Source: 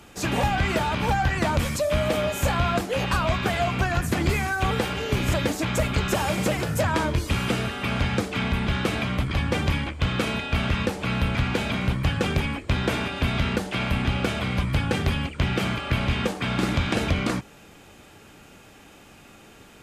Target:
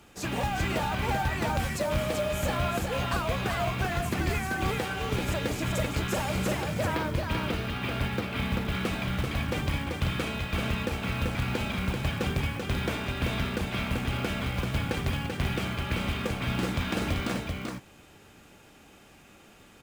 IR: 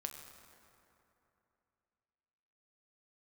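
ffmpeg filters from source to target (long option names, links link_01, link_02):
-filter_complex "[0:a]asettb=1/sr,asplit=3[link_01][link_02][link_03];[link_01]atrim=end=6.564[link_04];[link_02]atrim=start=6.56:end=8.72,asetpts=PTS-STARTPTS,afade=type=in:duration=0.004:curve=qsin,afade=type=out:start_time=2.156:duration=0.004:curve=qsin,lowpass=frequency=4900:width=0.5412,lowpass=frequency=4900:width=1.3066[link_05];[link_03]atrim=start=8.716[link_06];[link_04][link_05]acrossfade=duration=0.004:curve1=hsin:curve2=qsin[link_07];[link_07][link_06]acrossfade=duration=0.004:curve1=qsin:curve2=hsin,acrusher=bits=5:mode=log:mix=0:aa=0.000001,aecho=1:1:387:0.631,volume=-6.5dB"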